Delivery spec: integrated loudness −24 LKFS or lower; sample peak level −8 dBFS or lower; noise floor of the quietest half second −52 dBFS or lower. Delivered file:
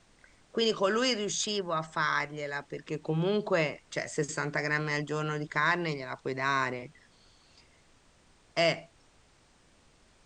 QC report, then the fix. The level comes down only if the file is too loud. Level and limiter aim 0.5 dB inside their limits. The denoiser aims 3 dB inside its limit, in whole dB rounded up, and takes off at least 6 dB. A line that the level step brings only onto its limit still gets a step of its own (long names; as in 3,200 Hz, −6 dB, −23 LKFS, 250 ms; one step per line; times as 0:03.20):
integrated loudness −30.5 LKFS: in spec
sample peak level −13.5 dBFS: in spec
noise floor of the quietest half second −63 dBFS: in spec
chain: no processing needed